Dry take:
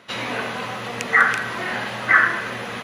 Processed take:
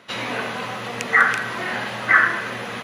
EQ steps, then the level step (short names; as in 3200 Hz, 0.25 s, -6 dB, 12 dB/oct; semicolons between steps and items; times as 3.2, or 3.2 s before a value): HPF 70 Hz; 0.0 dB